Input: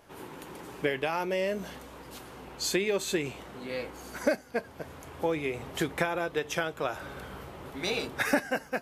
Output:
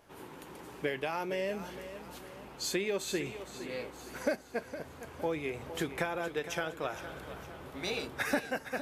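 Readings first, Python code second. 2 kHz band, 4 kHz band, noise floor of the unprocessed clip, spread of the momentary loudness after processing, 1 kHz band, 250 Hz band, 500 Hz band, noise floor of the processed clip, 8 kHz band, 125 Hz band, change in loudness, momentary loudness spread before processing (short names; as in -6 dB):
-4.5 dB, -4.0 dB, -49 dBFS, 13 LU, -4.5 dB, -4.5 dB, -4.5 dB, -51 dBFS, -4.0 dB, -4.0 dB, -5.0 dB, 16 LU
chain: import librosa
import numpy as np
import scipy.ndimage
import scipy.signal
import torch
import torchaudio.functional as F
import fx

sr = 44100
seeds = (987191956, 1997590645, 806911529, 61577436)

p1 = 10.0 ** (-21.5 / 20.0) * np.tanh(x / 10.0 ** (-21.5 / 20.0))
p2 = x + (p1 * librosa.db_to_amplitude(-10.5))
p3 = fx.echo_feedback(p2, sr, ms=462, feedback_pct=46, wet_db=-12.0)
y = p3 * librosa.db_to_amplitude(-6.5)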